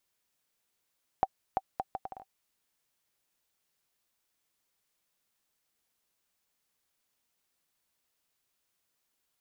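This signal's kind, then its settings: bouncing ball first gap 0.34 s, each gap 0.67, 769 Hz, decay 42 ms -13 dBFS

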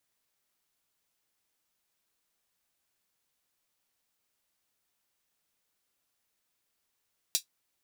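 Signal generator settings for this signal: closed hi-hat, high-pass 4100 Hz, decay 0.11 s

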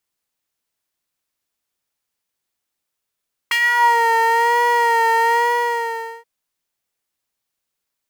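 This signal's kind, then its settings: synth patch with vibrato A#5, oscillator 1 triangle, oscillator 2 sine, interval +12 st, oscillator 2 level -4.5 dB, sub -7.5 dB, noise -21 dB, filter highpass, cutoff 520 Hz, Q 2.8, filter envelope 2.5 oct, filter decay 0.45 s, filter sustain 10%, attack 7.7 ms, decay 0.08 s, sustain -7.5 dB, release 0.89 s, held 1.84 s, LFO 1.1 Hz, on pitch 43 cents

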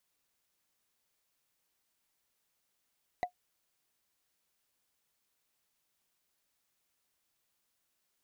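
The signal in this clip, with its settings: wood hit, lowest mode 720 Hz, decay 0.10 s, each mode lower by 8 dB, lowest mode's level -24 dB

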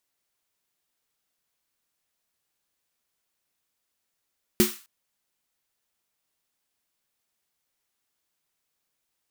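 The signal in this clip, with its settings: snare drum length 0.26 s, tones 220 Hz, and 360 Hz, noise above 1100 Hz, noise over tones -5.5 dB, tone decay 0.19 s, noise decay 0.39 s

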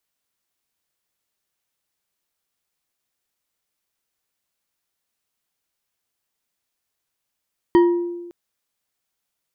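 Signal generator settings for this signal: glass hit bar, length 0.56 s, lowest mode 347 Hz, decay 1.21 s, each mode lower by 9 dB, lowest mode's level -8.5 dB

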